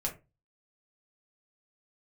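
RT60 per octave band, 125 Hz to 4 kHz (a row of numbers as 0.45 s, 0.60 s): 0.45 s, 0.30 s, 0.30 s, 0.25 s, 0.20 s, 0.15 s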